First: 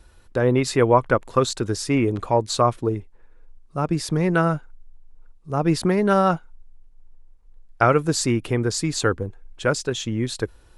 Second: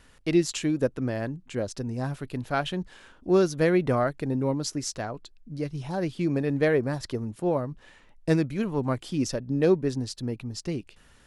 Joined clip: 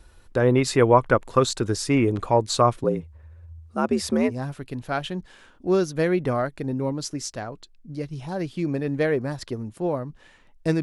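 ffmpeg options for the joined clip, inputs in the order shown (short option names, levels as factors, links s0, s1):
-filter_complex "[0:a]asettb=1/sr,asplit=3[s0][s1][s2];[s0]atrim=end=2.844[s3];[s1]atrim=start=2.84:end=4.32,asetpts=PTS-STARTPTS,afade=t=in:d=0.004:c=qsin,afade=t=out:st=1.476:d=0.004:c=qsin,afreqshift=67[s4];[s2]atrim=start=4.316[s5];[s3][s4]acrossfade=d=0.004:c1=hsin:c2=qsin[s6];[s6][s5]acrossfade=d=0.004:c1=qsin:c2=hsin,apad=whole_dur=10.82,atrim=end=10.82,atrim=end=4.32,asetpts=PTS-STARTPTS[s7];[1:a]atrim=start=1.88:end=8.44,asetpts=PTS-STARTPTS[s8];[s7][s8]acrossfade=d=0.06:c1=tri:c2=tri"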